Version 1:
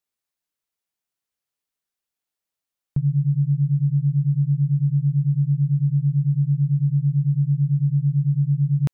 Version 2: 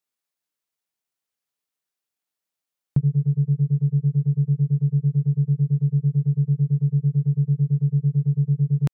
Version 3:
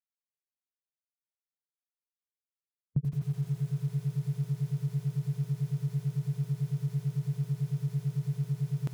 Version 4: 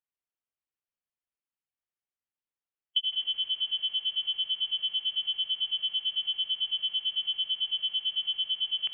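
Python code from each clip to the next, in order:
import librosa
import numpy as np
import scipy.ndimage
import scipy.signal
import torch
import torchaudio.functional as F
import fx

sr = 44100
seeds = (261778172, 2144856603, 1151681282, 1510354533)

y1 = fx.transient(x, sr, attack_db=6, sustain_db=-12)
y1 = fx.low_shelf(y1, sr, hz=68.0, db=-11.5)
y2 = fx.bin_expand(y1, sr, power=1.5)
y2 = fx.echo_crushed(y2, sr, ms=85, feedback_pct=80, bits=7, wet_db=-8)
y2 = F.gain(torch.from_numpy(y2), -8.0).numpy()
y3 = fx.freq_invert(y2, sr, carrier_hz=3200)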